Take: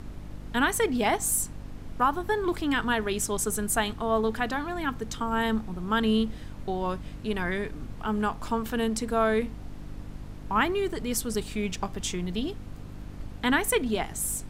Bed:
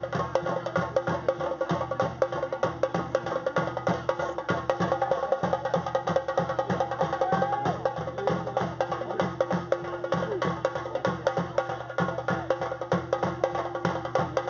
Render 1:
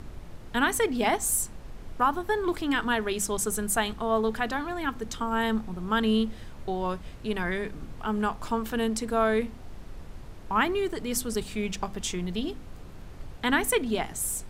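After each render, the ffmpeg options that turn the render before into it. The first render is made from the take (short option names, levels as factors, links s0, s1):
-af "bandreject=f=50:t=h:w=4,bandreject=f=100:t=h:w=4,bandreject=f=150:t=h:w=4,bandreject=f=200:t=h:w=4,bandreject=f=250:t=h:w=4,bandreject=f=300:t=h:w=4"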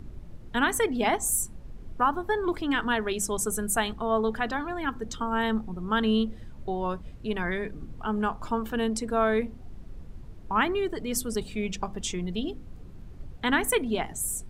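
-af "afftdn=nr=10:nf=-43"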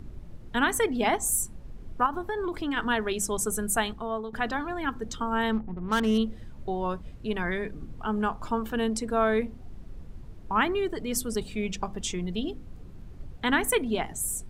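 -filter_complex "[0:a]asettb=1/sr,asplit=3[s0][s1][s2];[s0]atrim=end=2.064[s3];[s1]atrim=start=2.06:end=2.77,asetpts=PTS-STARTPTS,afade=t=in:d=0.004:c=qsin,afade=t=out:st=0.706:d=0.004:c=qsin,acompressor=threshold=0.0501:ratio=5:attack=3.2:release=140:knee=1:detection=peak[s4];[s2]atrim=start=2.766[s5];[s3][s4]acrossfade=d=0.004:c1=hsin:c2=qsin[s6];[s6][s5]acrossfade=d=0.004:c1=qsin:c2=hsin,asettb=1/sr,asplit=3[s7][s8][s9];[s7]atrim=end=5.524[s10];[s8]atrim=start=5.52:end=6.18,asetpts=PTS-STARTPTS,afade=t=in:d=0.004:c=qsin,afade=t=out:st=0.656:d=0.004:c=qsin,adynamicsmooth=sensitivity=5.5:basefreq=670[s11];[s9]atrim=start=6.176[s12];[s10][s11]acrossfade=d=0.004:c1=hsin:c2=qsin[s13];[s13][s12]acrossfade=d=0.004:c1=qsin:c2=hsin,asplit=2[s14][s15];[s14]atrim=end=4.33,asetpts=PTS-STARTPTS,afade=t=out:st=3.8:d=0.53:silence=0.199526[s16];[s15]atrim=start=4.33,asetpts=PTS-STARTPTS,afade=t=in:d=0.004:c=hsin:silence=0.199526[s17];[s16][s17]concat=n=2:v=0:a=1"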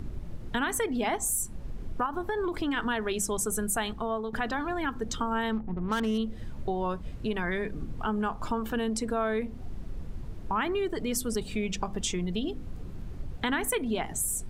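-filter_complex "[0:a]asplit=2[s0][s1];[s1]alimiter=limit=0.0891:level=0:latency=1:release=23,volume=0.841[s2];[s0][s2]amix=inputs=2:normalize=0,acompressor=threshold=0.0355:ratio=2.5"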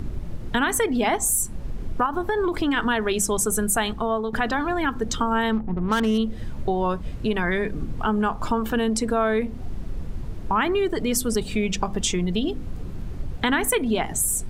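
-af "volume=2.24"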